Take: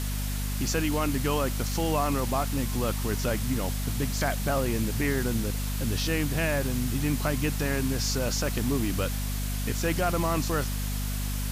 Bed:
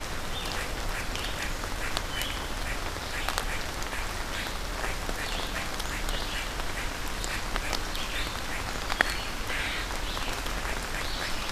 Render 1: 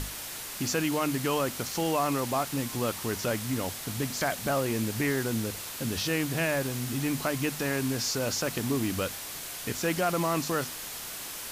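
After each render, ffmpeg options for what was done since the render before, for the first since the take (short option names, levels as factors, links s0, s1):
-af "bandreject=f=50:t=h:w=6,bandreject=f=100:t=h:w=6,bandreject=f=150:t=h:w=6,bandreject=f=200:t=h:w=6,bandreject=f=250:t=h:w=6"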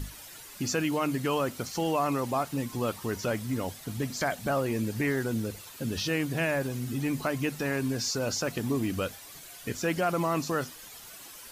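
-af "afftdn=nr=11:nf=-39"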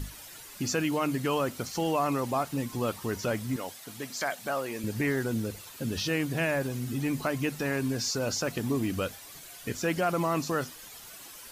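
-filter_complex "[0:a]asettb=1/sr,asplit=3[s0][s1][s2];[s0]atrim=end=3.564[s3];[s1]atrim=start=3.56:end=4.84,asetpts=PTS-STARTPTS,afade=t=in:d=0.004:c=qsin,afade=t=out:st=1.276:d=0.004:c=qsin,highpass=f=600:p=1[s4];[s2]atrim=start=4.836[s5];[s3][s4]acrossfade=d=0.004:c1=hsin:c2=qsin[s6];[s6][s5]acrossfade=d=0.004:c1=qsin:c2=hsin"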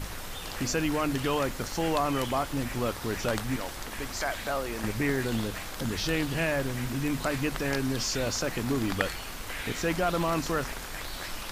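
-filter_complex "[1:a]volume=0.501[s0];[0:a][s0]amix=inputs=2:normalize=0"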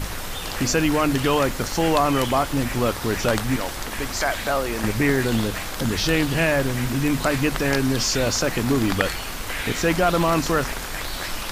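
-af "volume=2.51,alimiter=limit=0.708:level=0:latency=1"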